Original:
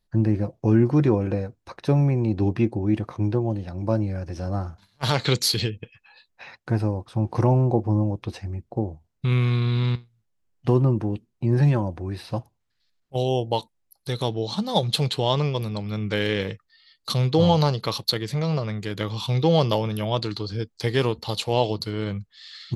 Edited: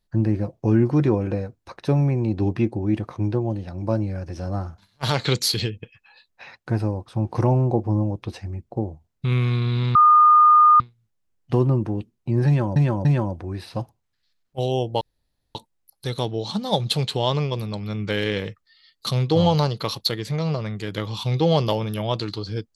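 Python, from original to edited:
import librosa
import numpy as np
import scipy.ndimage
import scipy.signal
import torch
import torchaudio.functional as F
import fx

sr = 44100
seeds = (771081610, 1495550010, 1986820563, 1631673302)

y = fx.edit(x, sr, fx.insert_tone(at_s=9.95, length_s=0.85, hz=1220.0, db=-9.5),
    fx.repeat(start_s=11.62, length_s=0.29, count=3),
    fx.insert_room_tone(at_s=13.58, length_s=0.54), tone=tone)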